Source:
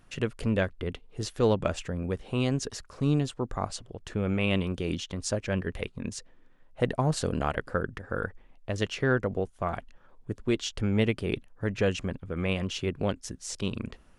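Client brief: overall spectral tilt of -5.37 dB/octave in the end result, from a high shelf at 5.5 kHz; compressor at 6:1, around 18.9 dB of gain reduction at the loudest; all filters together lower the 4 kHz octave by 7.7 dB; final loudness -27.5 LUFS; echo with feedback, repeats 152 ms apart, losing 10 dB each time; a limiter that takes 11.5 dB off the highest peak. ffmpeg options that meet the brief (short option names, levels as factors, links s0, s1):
-af "equalizer=f=4000:t=o:g=-8,highshelf=f=5500:g=-8.5,acompressor=threshold=0.00891:ratio=6,alimiter=level_in=5.62:limit=0.0631:level=0:latency=1,volume=0.178,aecho=1:1:152|304|456|608:0.316|0.101|0.0324|0.0104,volume=14.1"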